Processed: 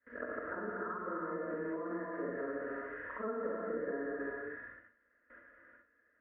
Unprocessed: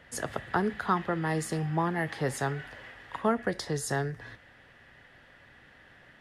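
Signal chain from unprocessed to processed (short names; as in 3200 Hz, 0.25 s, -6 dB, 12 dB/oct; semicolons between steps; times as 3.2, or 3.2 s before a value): short-time reversal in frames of 0.136 s; bell 110 Hz -7.5 dB 2.6 oct; treble ducked by the level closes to 1100 Hz, closed at -32.5 dBFS; gate with hold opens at -48 dBFS; tilt +2.5 dB/oct; notch comb 380 Hz; non-linear reverb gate 0.45 s flat, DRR -2.5 dB; compressor, threshold -42 dBFS, peak gain reduction 13.5 dB; steep low-pass 1600 Hz 36 dB/oct; fixed phaser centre 340 Hz, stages 4; gain +11.5 dB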